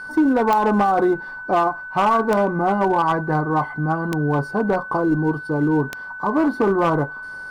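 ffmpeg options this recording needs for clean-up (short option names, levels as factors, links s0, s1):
-af "adeclick=t=4,bandreject=f=1500:w=30"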